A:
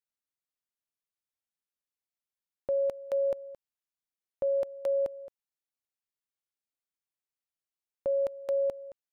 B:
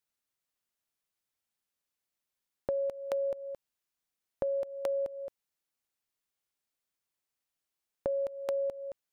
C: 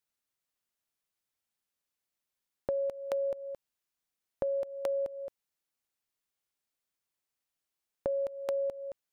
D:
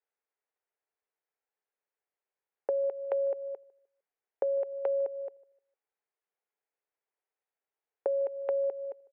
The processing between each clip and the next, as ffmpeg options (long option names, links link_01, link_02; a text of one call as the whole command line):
ffmpeg -i in.wav -af "acompressor=threshold=-36dB:ratio=6,volume=5.5dB" out.wav
ffmpeg -i in.wav -af anull out.wav
ffmpeg -i in.wav -filter_complex "[0:a]highpass=frequency=370:width=0.5412,highpass=frequency=370:width=1.3066,equalizer=frequency=440:width_type=q:width=4:gain=8,equalizer=frequency=800:width_type=q:width=4:gain=4,equalizer=frequency=1200:width_type=q:width=4:gain=-3,lowpass=frequency=2200:width=0.5412,lowpass=frequency=2200:width=1.3066,asplit=2[link_01][link_02];[link_02]adelay=152,lowpass=frequency=830:poles=1,volume=-21dB,asplit=2[link_03][link_04];[link_04]adelay=152,lowpass=frequency=830:poles=1,volume=0.35,asplit=2[link_05][link_06];[link_06]adelay=152,lowpass=frequency=830:poles=1,volume=0.35[link_07];[link_01][link_03][link_05][link_07]amix=inputs=4:normalize=0" out.wav